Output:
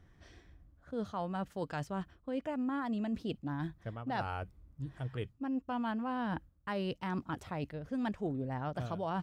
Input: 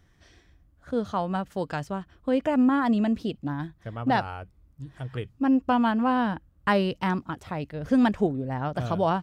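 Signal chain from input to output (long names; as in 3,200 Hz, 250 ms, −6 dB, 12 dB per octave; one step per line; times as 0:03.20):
reversed playback
downward compressor 6 to 1, threshold −34 dBFS, peak gain reduction 16 dB
reversed playback
one half of a high-frequency compander decoder only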